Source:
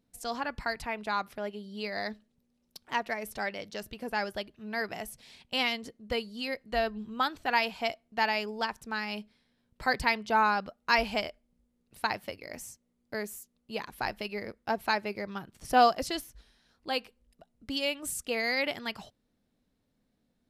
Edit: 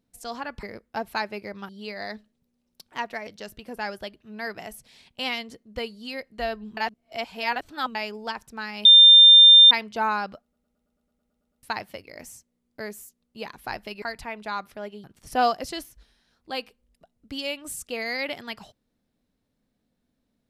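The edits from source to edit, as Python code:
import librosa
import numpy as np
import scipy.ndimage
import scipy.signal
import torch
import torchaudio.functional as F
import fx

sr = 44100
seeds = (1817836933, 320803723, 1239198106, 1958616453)

y = fx.edit(x, sr, fx.swap(start_s=0.63, length_s=1.02, other_s=14.36, other_length_s=1.06),
    fx.cut(start_s=3.23, length_s=0.38),
    fx.reverse_span(start_s=7.11, length_s=1.18),
    fx.bleep(start_s=9.19, length_s=0.86, hz=3600.0, db=-7.5),
    fx.stutter_over(start_s=10.76, slice_s=0.11, count=11), tone=tone)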